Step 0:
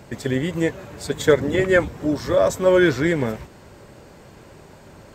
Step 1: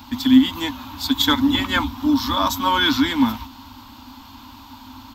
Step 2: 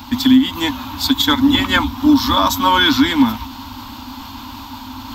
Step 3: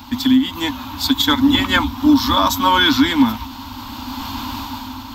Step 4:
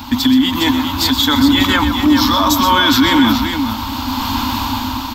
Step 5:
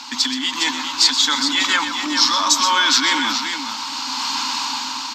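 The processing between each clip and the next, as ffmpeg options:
-af "firequalizer=gain_entry='entry(100,0);entry(150,-27);entry(260,14);entry(380,-26);entry(570,-19);entry(910,10);entry(1800,-7);entry(3400,12);entry(9000,-10);entry(13000,12)':delay=0.05:min_phase=1,volume=1.41"
-af "areverse,acompressor=mode=upward:threshold=0.0224:ratio=2.5,areverse,alimiter=limit=0.316:level=0:latency=1:release=327,volume=2.24"
-af "dynaudnorm=f=240:g=7:m=3.98,volume=0.708"
-filter_complex "[0:a]alimiter=limit=0.237:level=0:latency=1:release=37,asplit=2[s0][s1];[s1]aecho=0:1:125|411:0.316|0.447[s2];[s0][s2]amix=inputs=2:normalize=0,volume=2.37"
-af "crystalizer=i=6:c=0,highpass=440,equalizer=f=440:t=q:w=4:g=-4,equalizer=f=660:t=q:w=4:g=-6,equalizer=f=3400:t=q:w=4:g=-7,lowpass=f=6700:w=0.5412,lowpass=f=6700:w=1.3066,volume=0.447"

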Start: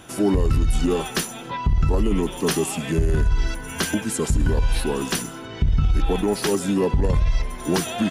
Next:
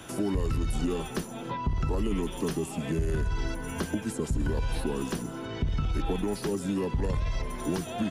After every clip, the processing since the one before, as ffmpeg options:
-filter_complex "[0:a]bandreject=f=750:w=24,acrossover=split=83|300|1000[s0][s1][s2][s3];[s0]acompressor=threshold=0.0316:ratio=4[s4];[s1]acompressor=threshold=0.0251:ratio=4[s5];[s2]acompressor=threshold=0.0178:ratio=4[s6];[s3]acompressor=threshold=0.00708:ratio=4[s7];[s4][s5][s6][s7]amix=inputs=4:normalize=0"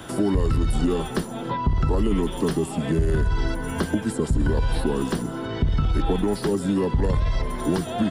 -af "equalizer=f=2500:t=o:w=0.33:g=-7,equalizer=f=6300:t=o:w=0.33:g=-9,equalizer=f=12500:t=o:w=0.33:g=-11,volume=2.24"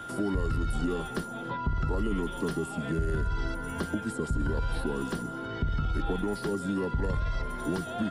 -af "aeval=exprs='val(0)+0.0282*sin(2*PI*1400*n/s)':c=same,volume=0.398"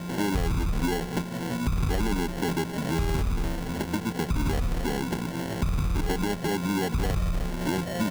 -filter_complex "[0:a]asplit=2[s0][s1];[s1]alimiter=level_in=1.68:limit=0.0631:level=0:latency=1:release=188,volume=0.596,volume=1[s2];[s0][s2]amix=inputs=2:normalize=0,acrusher=samples=36:mix=1:aa=0.000001"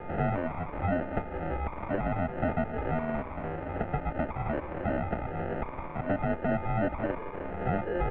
-af "highpass=f=190:t=q:w=0.5412,highpass=f=190:t=q:w=1.307,lowpass=f=2500:t=q:w=0.5176,lowpass=f=2500:t=q:w=0.7071,lowpass=f=2500:t=q:w=1.932,afreqshift=-170,equalizer=f=570:t=o:w=1.5:g=8,volume=0.75"

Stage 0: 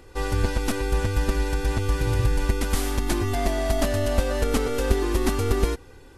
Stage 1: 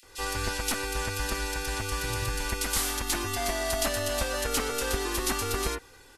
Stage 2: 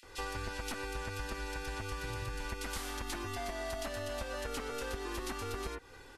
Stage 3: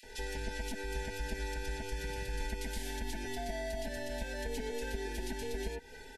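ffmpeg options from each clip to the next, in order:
-filter_complex "[0:a]tiltshelf=f=770:g=-8.5,acontrast=37,acrossover=split=2600[s0][s1];[s0]adelay=30[s2];[s2][s1]amix=inputs=2:normalize=0,volume=0.376"
-af "highshelf=f=5000:g=-11.5,acompressor=threshold=0.0126:ratio=6,volume=1.19"
-filter_complex "[0:a]aecho=1:1:4.6:0.89,acrossover=split=340[s0][s1];[s1]alimiter=level_in=3.16:limit=0.0631:level=0:latency=1:release=172,volume=0.316[s2];[s0][s2]amix=inputs=2:normalize=0,asuperstop=centerf=1200:order=20:qfactor=2.2,volume=1.12"

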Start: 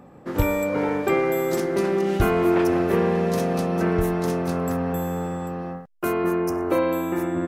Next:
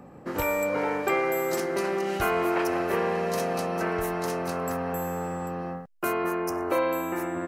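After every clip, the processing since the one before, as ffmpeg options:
-filter_complex "[0:a]bandreject=f=3500:w=11,acrossover=split=490[s0][s1];[s0]acompressor=threshold=0.02:ratio=5[s2];[s2][s1]amix=inputs=2:normalize=0"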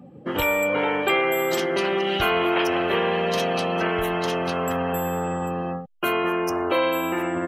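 -filter_complex "[0:a]equalizer=f=3200:t=o:w=0.64:g=14.5,afftdn=nr=18:nf=-40,asplit=2[s0][s1];[s1]alimiter=limit=0.0708:level=0:latency=1,volume=0.891[s2];[s0][s2]amix=inputs=2:normalize=0"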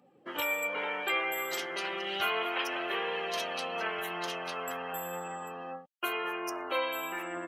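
-af "highpass=f=1100:p=1,flanger=delay=2.1:depth=5.1:regen=53:speed=0.32:shape=triangular,volume=0.794"

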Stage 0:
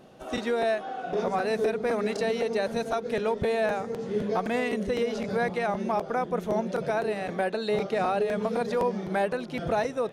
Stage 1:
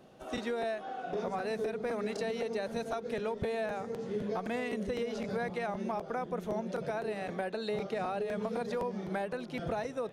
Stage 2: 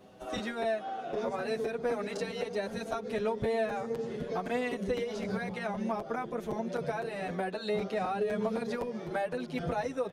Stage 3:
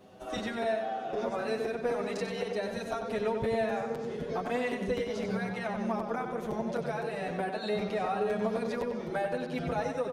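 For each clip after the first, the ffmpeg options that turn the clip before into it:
-filter_complex "[0:a]acrossover=split=170[s0][s1];[s1]acompressor=threshold=0.0501:ratio=6[s2];[s0][s2]amix=inputs=2:normalize=0,volume=0.562"
-filter_complex "[0:a]asplit=2[s0][s1];[s1]adelay=7.6,afreqshift=0.39[s2];[s0][s2]amix=inputs=2:normalize=1,volume=1.78"
-filter_complex "[0:a]asplit=2[s0][s1];[s1]adelay=94,lowpass=f=5000:p=1,volume=0.501,asplit=2[s2][s3];[s3]adelay=94,lowpass=f=5000:p=1,volume=0.53,asplit=2[s4][s5];[s5]adelay=94,lowpass=f=5000:p=1,volume=0.53,asplit=2[s6][s7];[s7]adelay=94,lowpass=f=5000:p=1,volume=0.53,asplit=2[s8][s9];[s9]adelay=94,lowpass=f=5000:p=1,volume=0.53,asplit=2[s10][s11];[s11]adelay=94,lowpass=f=5000:p=1,volume=0.53,asplit=2[s12][s13];[s13]adelay=94,lowpass=f=5000:p=1,volume=0.53[s14];[s0][s2][s4][s6][s8][s10][s12][s14]amix=inputs=8:normalize=0"

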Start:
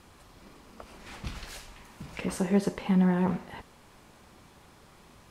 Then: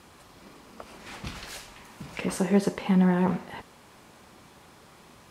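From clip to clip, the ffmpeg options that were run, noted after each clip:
-af "highpass=f=120:p=1,volume=1.5"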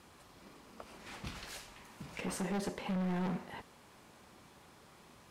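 -af "asoftclip=type=hard:threshold=0.0501,volume=0.473"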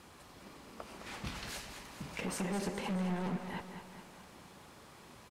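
-filter_complex "[0:a]acompressor=threshold=0.0141:ratio=6,asplit=2[s0][s1];[s1]aecho=0:1:212|424|636|848|1060|1272:0.355|0.195|0.107|0.059|0.0325|0.0179[s2];[s0][s2]amix=inputs=2:normalize=0,volume=1.41"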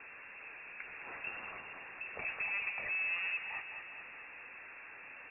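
-af "aeval=exprs='val(0)+0.5*0.00562*sgn(val(0))':c=same,lowpass=f=2400:t=q:w=0.5098,lowpass=f=2400:t=q:w=0.6013,lowpass=f=2400:t=q:w=0.9,lowpass=f=2400:t=q:w=2.563,afreqshift=-2800,volume=0.75"

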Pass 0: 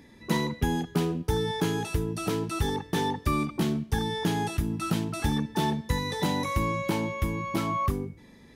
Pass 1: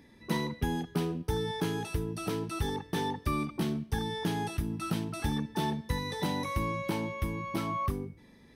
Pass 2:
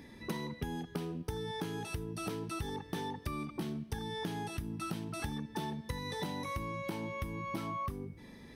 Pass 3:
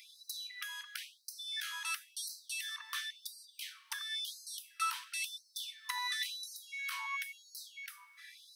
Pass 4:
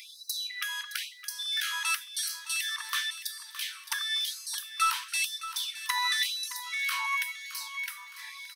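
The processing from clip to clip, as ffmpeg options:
-af "bandreject=f=7000:w=6.1,volume=0.596"
-af "acompressor=threshold=0.00891:ratio=6,volume=1.78"
-filter_complex "[0:a]acrossover=split=720|1500[s0][s1][s2];[s0]crystalizer=i=4:c=0[s3];[s3][s1][s2]amix=inputs=3:normalize=0,afftfilt=real='re*gte(b*sr/1024,890*pow(4000/890,0.5+0.5*sin(2*PI*0.96*pts/sr)))':imag='im*gte(b*sr/1024,890*pow(4000/890,0.5+0.5*sin(2*PI*0.96*pts/sr)))':win_size=1024:overlap=0.75,volume=2.51"
-filter_complex "[0:a]asplit=2[s0][s1];[s1]asoftclip=type=tanh:threshold=0.0224,volume=0.398[s2];[s0][s2]amix=inputs=2:normalize=0,aecho=1:1:616|1232|1848|2464:0.224|0.0963|0.0414|0.0178,volume=2.11"

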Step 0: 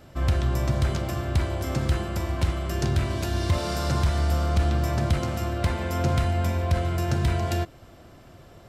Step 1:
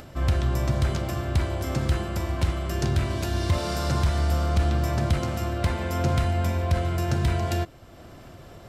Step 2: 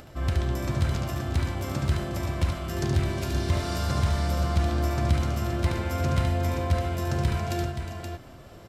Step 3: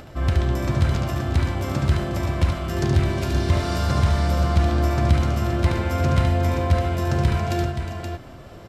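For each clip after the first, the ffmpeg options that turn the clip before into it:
-af "acompressor=mode=upward:threshold=0.0126:ratio=2.5"
-af "aecho=1:1:72|360|391|524:0.596|0.237|0.15|0.473,volume=0.668"
-af "highshelf=f=5700:g=-6.5,volume=1.88"

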